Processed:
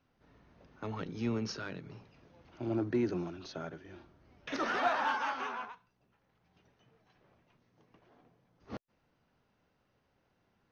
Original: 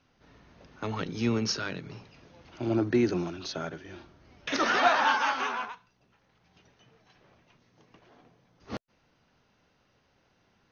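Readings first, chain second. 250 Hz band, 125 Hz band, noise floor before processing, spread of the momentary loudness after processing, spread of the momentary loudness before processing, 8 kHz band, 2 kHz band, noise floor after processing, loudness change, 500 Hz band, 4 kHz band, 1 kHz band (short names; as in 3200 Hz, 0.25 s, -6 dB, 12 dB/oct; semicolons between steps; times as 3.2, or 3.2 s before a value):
-6.0 dB, -6.0 dB, -69 dBFS, 18 LU, 19 LU, n/a, -8.5 dB, -76 dBFS, -7.0 dB, -6.5 dB, -11.5 dB, -7.0 dB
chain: high shelf 2500 Hz -8 dB; in parallel at -12 dB: hard clip -25.5 dBFS, distortion -9 dB; on the sum: gain -7.5 dB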